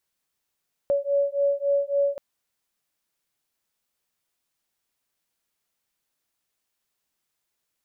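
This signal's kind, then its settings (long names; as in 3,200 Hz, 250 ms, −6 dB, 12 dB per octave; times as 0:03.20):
two tones that beat 562 Hz, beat 3.6 Hz, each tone −23.5 dBFS 1.28 s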